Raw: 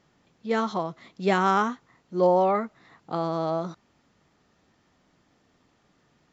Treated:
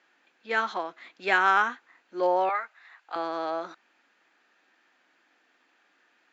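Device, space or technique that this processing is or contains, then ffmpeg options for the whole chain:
phone speaker on a table: -filter_complex "[0:a]highpass=f=340:w=0.5412,highpass=f=340:w=1.3066,equalizer=f=420:t=q:w=4:g=-8,equalizer=f=600:t=q:w=4:g=-5,equalizer=f=1100:t=q:w=4:g=-3,equalizer=f=1600:t=q:w=4:g=10,equalizer=f=2500:t=q:w=4:g=7,equalizer=f=5500:t=q:w=4:g=-6,lowpass=f=6900:w=0.5412,lowpass=f=6900:w=1.3066,asettb=1/sr,asplit=3[s0][s1][s2];[s0]atrim=end=2.494[s3];[s1]atrim=start=2.49:end=3.16,asetpts=PTS-STARTPTS,afade=t=in:d=0.004:c=qsin,afade=t=out:st=0.666:d=0.004:c=qsin,highpass=780[s4];[s2]atrim=start=3.156[s5];[s3][s4]acrossfade=d=0.004:c1=hsin:c2=qsin[s6];[s6][s5]acrossfade=d=0.004:c1=qsin:c2=hsin"

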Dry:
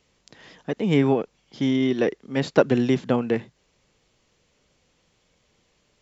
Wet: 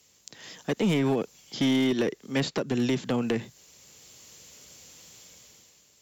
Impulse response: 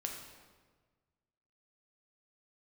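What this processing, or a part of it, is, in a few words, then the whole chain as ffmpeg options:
FM broadcast chain: -filter_complex "[0:a]highpass=f=58:w=0.5412,highpass=f=58:w=1.3066,dynaudnorm=f=140:g=9:m=3.55,acrossover=split=330|4300[s0][s1][s2];[s0]acompressor=threshold=0.141:ratio=4[s3];[s1]acompressor=threshold=0.0794:ratio=4[s4];[s2]acompressor=threshold=0.00178:ratio=4[s5];[s3][s4][s5]amix=inputs=3:normalize=0,aemphasis=mode=production:type=50fm,alimiter=limit=0.237:level=0:latency=1:release=145,asoftclip=type=hard:threshold=0.158,lowpass=f=15000:w=0.5412,lowpass=f=15000:w=1.3066,aemphasis=mode=production:type=50fm,volume=0.75"

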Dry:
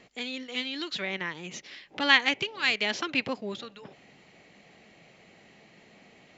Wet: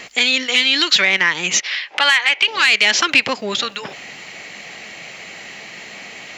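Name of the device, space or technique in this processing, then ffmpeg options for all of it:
mastering chain: -filter_complex "[0:a]asettb=1/sr,asplit=3[s0][s1][s2];[s0]atrim=end=1.604[s3];[s1]atrim=start=1.6:end=2.48,asetpts=PTS-STARTPTS,afade=t=in:d=0.004:c=qsin,afade=t=out:st=0.876:d=0.004:c=qsin,acrossover=split=500 5100:gain=0.1 1 0.0794[s4][s5][s6];[s4][s5][s6]amix=inputs=3:normalize=0[s7];[s2]atrim=start=2.476[s8];[s3][s7]acrossfade=d=0.004:c1=hsin:c2=qsin[s9];[s9][s8]acrossfade=d=0.004:c1=qsin:c2=hsin,equalizer=f=3700:t=o:w=0.77:g=-3.5,acompressor=threshold=0.0178:ratio=2,asoftclip=type=tanh:threshold=0.075,tiltshelf=f=880:g=-8.5,alimiter=level_in=10:limit=0.891:release=50:level=0:latency=1,volume=0.891"

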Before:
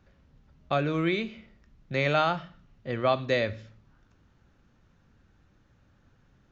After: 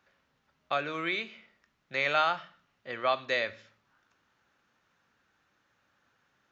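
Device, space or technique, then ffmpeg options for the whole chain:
filter by subtraction: -filter_complex "[0:a]asplit=2[s0][s1];[s1]lowpass=1400,volume=-1[s2];[s0][s2]amix=inputs=2:normalize=0,volume=0.891"

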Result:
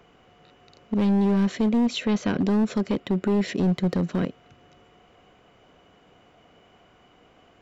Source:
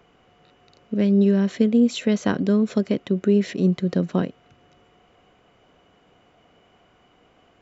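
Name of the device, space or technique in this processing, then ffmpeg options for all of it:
limiter into clipper: -filter_complex "[0:a]alimiter=limit=0.211:level=0:latency=1:release=48,asoftclip=type=hard:threshold=0.112,asettb=1/sr,asplit=3[s0][s1][s2];[s0]atrim=end=1.864[s3];[s1]atrim=start=1.86:end=2.39,asetpts=PTS-STARTPTS,afade=t=in:d=0.004:c=qsin,afade=t=out:st=0.526:d=0.004:c=qsin,lowpass=5500[s4];[s2]atrim=start=2.386[s5];[s3][s4]acrossfade=d=0.004:c1=hsin:c2=qsin[s6];[s6][s5]acrossfade=d=0.004:c1=qsin:c2=hsin,asettb=1/sr,asplit=3[s7][s8][s9];[s7]atrim=end=3.004[s10];[s8]atrim=start=3:end=3.48,asetpts=PTS-STARTPTS,afade=t=in:d=0.004:c=qsin,afade=t=out:st=0.476:d=0.004:c=qsin,bandreject=f=6200:w=6.3[s11];[s9]atrim=start=3.476[s12];[s10][s11]acrossfade=d=0.004:c1=hsin:c2=qsin[s13];[s13][s12]acrossfade=d=0.004:c1=qsin:c2=hsin,volume=1.19"

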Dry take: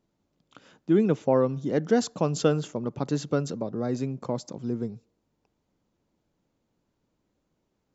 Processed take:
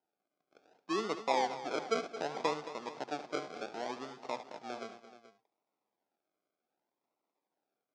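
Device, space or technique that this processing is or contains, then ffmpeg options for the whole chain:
circuit-bent sampling toy: -af "lowshelf=f=360:g=-4,acrusher=samples=38:mix=1:aa=0.000001:lfo=1:lforange=22.8:lforate=0.66,highpass=500,equalizer=f=520:t=q:w=4:g=-4,equalizer=f=780:t=q:w=4:g=4,equalizer=f=1200:t=q:w=4:g=-3,equalizer=f=1800:t=q:w=4:g=-9,equalizer=f=2900:t=q:w=4:g=-8,equalizer=f=4100:t=q:w=4:g=-5,lowpass=f=5300:w=0.5412,lowpass=f=5300:w=1.3066,aecho=1:1:73|221|429:0.211|0.211|0.158,volume=0.668"

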